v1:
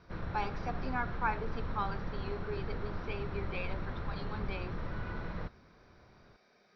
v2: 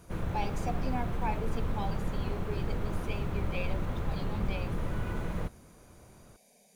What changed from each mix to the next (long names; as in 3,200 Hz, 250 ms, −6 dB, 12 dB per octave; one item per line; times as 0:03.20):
speech: add phaser with its sweep stopped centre 350 Hz, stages 6
master: remove Chebyshev low-pass with heavy ripple 5,700 Hz, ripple 6 dB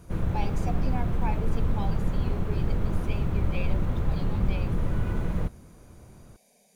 background: add low-shelf EQ 350 Hz +7.5 dB